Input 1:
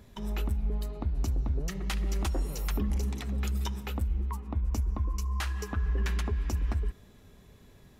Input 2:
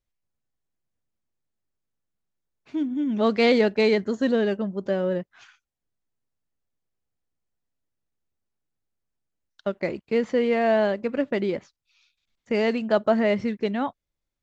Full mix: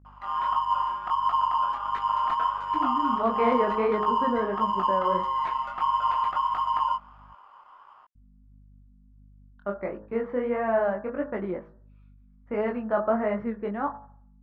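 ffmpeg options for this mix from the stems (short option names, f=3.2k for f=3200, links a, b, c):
-filter_complex "[0:a]aeval=exprs='val(0)*sgn(sin(2*PI*1000*n/s))':c=same,adelay=50,volume=-5dB[a];[1:a]lowpass=f=1k:p=1,bandreject=f=53.23:t=h:w=4,bandreject=f=106.46:t=h:w=4,bandreject=f=159.69:t=h:w=4,bandreject=f=212.92:t=h:w=4,bandreject=f=266.15:t=h:w=4,bandreject=f=319.38:t=h:w=4,bandreject=f=372.61:t=h:w=4,bandreject=f=425.84:t=h:w=4,bandreject=f=479.07:t=h:w=4,bandreject=f=532.3:t=h:w=4,bandreject=f=585.53:t=h:w=4,bandreject=f=638.76:t=h:w=4,bandreject=f=691.99:t=h:w=4,bandreject=f=745.22:t=h:w=4,bandreject=f=798.45:t=h:w=4,bandreject=f=851.68:t=h:w=4,bandreject=f=904.91:t=h:w=4,bandreject=f=958.14:t=h:w=4,bandreject=f=1.01137k:t=h:w=4,bandreject=f=1.0646k:t=h:w=4,bandreject=f=1.11783k:t=h:w=4,bandreject=f=1.17106k:t=h:w=4,bandreject=f=1.22429k:t=h:w=4,bandreject=f=1.27752k:t=h:w=4,bandreject=f=1.33075k:t=h:w=4,bandreject=f=1.38398k:t=h:w=4,bandreject=f=1.43721k:t=h:w=4,bandreject=f=1.49044k:t=h:w=4,bandreject=f=1.54367k:t=h:w=4,bandreject=f=1.5969k:t=h:w=4,bandreject=f=1.65013k:t=h:w=4,bandreject=f=1.70336k:t=h:w=4,bandreject=f=1.75659k:t=h:w=4,bandreject=f=1.80982k:t=h:w=4,bandreject=f=1.86305k:t=h:w=4,aeval=exprs='val(0)+0.00398*(sin(2*PI*50*n/s)+sin(2*PI*2*50*n/s)/2+sin(2*PI*3*50*n/s)/3+sin(2*PI*4*50*n/s)/4+sin(2*PI*5*50*n/s)/5)':c=same,volume=-3.5dB,asplit=3[b][c][d];[b]atrim=end=7.33,asetpts=PTS-STARTPTS,afade=t=out:st=7.326:d=0.004:c=hsin[e];[c]atrim=start=7.33:end=8.15,asetpts=PTS-STARTPTS,volume=0[f];[d]atrim=start=8.15,asetpts=PTS-STARTPTS,afade=t=in:d=0.004:c=hsin[g];[e][f][g]concat=n=3:v=0:a=1[h];[a][h]amix=inputs=2:normalize=0,lowpass=2.3k,equalizer=f=1.2k:w=0.99:g=14,flanger=delay=18.5:depth=6.5:speed=1.5"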